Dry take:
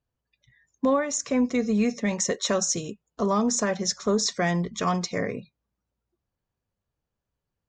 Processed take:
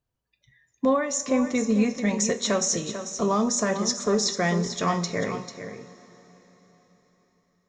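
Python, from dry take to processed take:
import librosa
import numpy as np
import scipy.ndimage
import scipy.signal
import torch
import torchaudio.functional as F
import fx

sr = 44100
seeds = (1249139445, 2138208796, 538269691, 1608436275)

y = x + 10.0 ** (-10.0 / 20.0) * np.pad(x, (int(443 * sr / 1000.0), 0))[:len(x)]
y = fx.rev_double_slope(y, sr, seeds[0], early_s=0.3, late_s=4.5, knee_db=-18, drr_db=7.5)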